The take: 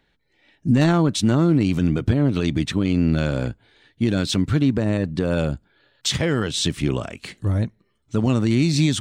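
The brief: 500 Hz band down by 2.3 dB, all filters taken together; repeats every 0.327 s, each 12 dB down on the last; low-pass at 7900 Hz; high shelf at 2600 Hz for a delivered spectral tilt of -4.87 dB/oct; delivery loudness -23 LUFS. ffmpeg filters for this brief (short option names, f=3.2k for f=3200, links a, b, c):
-af "lowpass=7.9k,equalizer=f=500:t=o:g=-3.5,highshelf=f=2.6k:g=7.5,aecho=1:1:327|654|981:0.251|0.0628|0.0157,volume=-2dB"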